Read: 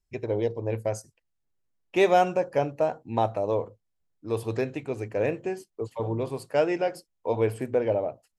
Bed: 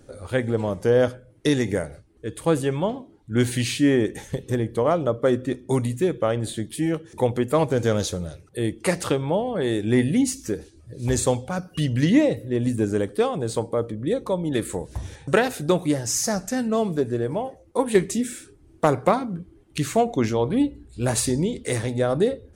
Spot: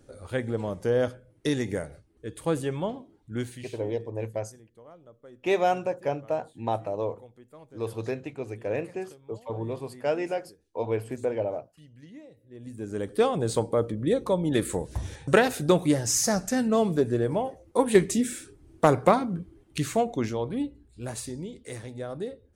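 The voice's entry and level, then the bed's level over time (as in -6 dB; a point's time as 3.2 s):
3.50 s, -3.5 dB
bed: 3.27 s -6 dB
3.87 s -29.5 dB
12.32 s -29.5 dB
13.23 s -0.5 dB
19.41 s -0.5 dB
21.25 s -13.5 dB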